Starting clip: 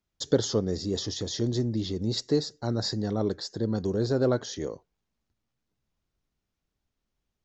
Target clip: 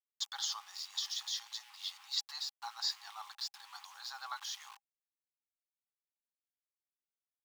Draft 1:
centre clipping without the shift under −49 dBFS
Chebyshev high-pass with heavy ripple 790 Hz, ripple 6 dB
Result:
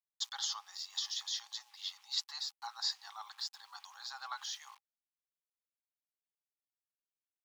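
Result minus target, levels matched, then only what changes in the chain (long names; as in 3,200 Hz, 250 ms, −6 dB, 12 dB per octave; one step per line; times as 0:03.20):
centre clipping without the shift: distortion −8 dB
change: centre clipping without the shift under −42.5 dBFS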